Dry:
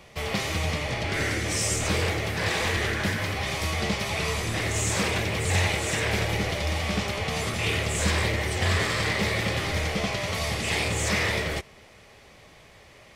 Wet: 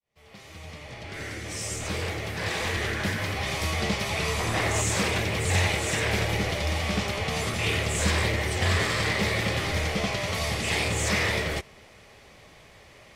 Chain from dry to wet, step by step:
fade in at the beginning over 3.62 s
0:04.39–0:04.82: parametric band 920 Hz +7 dB 1.5 octaves

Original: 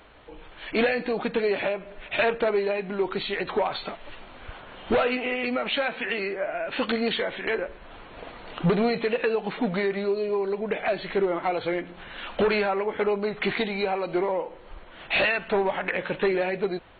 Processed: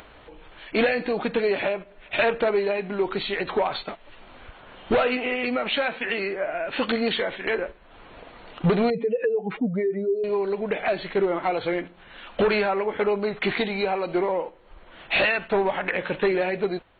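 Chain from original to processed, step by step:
0:08.90–0:10.24: expanding power law on the bin magnitudes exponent 2.2
noise gate −34 dBFS, range −9 dB
upward compression, threshold −39 dBFS
level +1.5 dB

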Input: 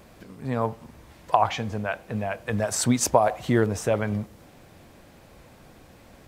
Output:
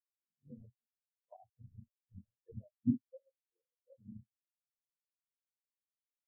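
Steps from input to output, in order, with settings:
random phases in long frames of 50 ms
amplitude modulation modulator 95 Hz, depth 100%
downward compressor 2.5 to 1, threshold −33 dBFS, peak gain reduction 12 dB
on a send at −14 dB: convolution reverb, pre-delay 8 ms
on the sum: treble cut that deepens with the level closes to 620 Hz, closed at −32 dBFS
0:01.73–0:02.40: phaser with its sweep stopped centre 2,000 Hz, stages 4
0:03.10–0:03.98: formant filter e
every bin expanded away from the loudest bin 4 to 1
level +1 dB

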